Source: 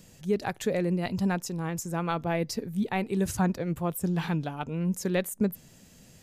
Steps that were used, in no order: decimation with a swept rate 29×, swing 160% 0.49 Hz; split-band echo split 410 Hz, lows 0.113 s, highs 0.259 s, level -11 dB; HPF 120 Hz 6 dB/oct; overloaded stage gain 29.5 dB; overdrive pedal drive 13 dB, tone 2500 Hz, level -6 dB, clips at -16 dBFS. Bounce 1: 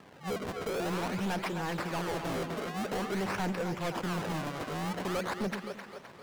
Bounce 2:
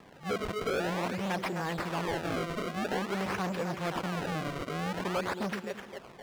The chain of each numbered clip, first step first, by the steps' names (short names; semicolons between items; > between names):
decimation with a swept rate > HPF > overdrive pedal > split-band echo > overloaded stage; split-band echo > overloaded stage > HPF > decimation with a swept rate > overdrive pedal